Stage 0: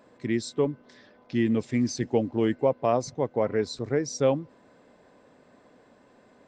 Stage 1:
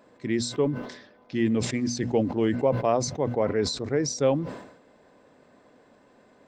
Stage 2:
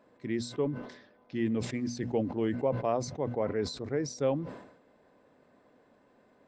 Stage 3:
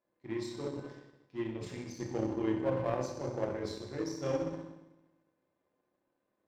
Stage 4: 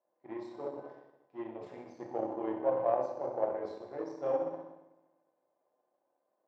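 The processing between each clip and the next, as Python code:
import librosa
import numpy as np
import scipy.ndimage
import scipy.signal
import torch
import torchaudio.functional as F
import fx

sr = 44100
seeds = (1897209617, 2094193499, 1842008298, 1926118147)

y1 = fx.hum_notches(x, sr, base_hz=60, count=4)
y1 = fx.sustainer(y1, sr, db_per_s=74.0)
y2 = fx.high_shelf(y1, sr, hz=5000.0, db=-8.5)
y2 = F.gain(torch.from_numpy(y2), -6.0).numpy()
y3 = fx.rev_fdn(y2, sr, rt60_s=1.2, lf_ratio=1.25, hf_ratio=1.0, size_ms=17.0, drr_db=-3.0)
y3 = fx.power_curve(y3, sr, exponent=1.4)
y3 = F.gain(torch.from_numpy(y3), -5.5).numpy()
y4 = fx.bandpass_q(y3, sr, hz=710.0, q=2.6)
y4 = F.gain(torch.from_numpy(y4), 8.0).numpy()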